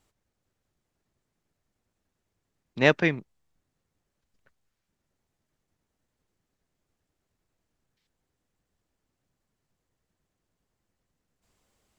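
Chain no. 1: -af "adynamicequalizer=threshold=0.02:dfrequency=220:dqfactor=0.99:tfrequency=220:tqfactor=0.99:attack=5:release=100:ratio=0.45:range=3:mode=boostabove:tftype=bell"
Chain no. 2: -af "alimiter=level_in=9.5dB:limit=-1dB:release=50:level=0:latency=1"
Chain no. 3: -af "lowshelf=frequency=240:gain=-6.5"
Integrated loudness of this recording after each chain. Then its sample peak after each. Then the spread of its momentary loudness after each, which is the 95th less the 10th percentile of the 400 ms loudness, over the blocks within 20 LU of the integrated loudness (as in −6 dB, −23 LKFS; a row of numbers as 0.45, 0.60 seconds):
−22.0, −18.0, −24.5 LKFS; −2.0, −1.0, −3.5 dBFS; 9, 16, 11 LU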